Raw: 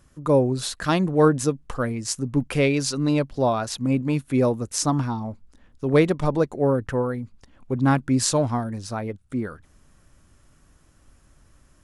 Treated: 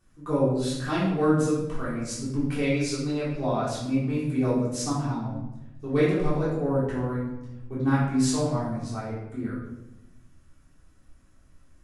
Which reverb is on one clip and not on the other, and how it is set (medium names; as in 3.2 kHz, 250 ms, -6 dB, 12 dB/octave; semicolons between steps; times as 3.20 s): simulated room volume 360 m³, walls mixed, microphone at 3.5 m; trim -14.5 dB